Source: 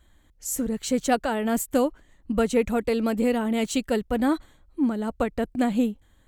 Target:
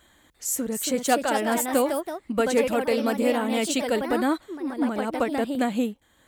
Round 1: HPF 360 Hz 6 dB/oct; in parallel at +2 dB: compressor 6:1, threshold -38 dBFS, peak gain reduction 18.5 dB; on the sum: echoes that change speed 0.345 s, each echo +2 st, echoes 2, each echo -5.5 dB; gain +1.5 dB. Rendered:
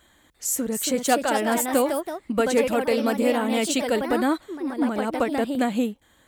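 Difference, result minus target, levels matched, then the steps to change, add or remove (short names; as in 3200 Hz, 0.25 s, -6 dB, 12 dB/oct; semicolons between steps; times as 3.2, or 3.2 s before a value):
compressor: peak gain reduction -9 dB
change: compressor 6:1, threshold -49 dBFS, peak gain reduction 27.5 dB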